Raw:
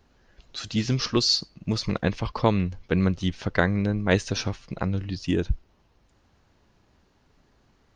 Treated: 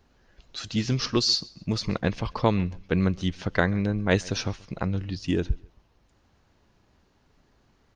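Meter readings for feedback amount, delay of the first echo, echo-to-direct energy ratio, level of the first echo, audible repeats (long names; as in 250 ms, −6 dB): 31%, 135 ms, −23.5 dB, −24.0 dB, 2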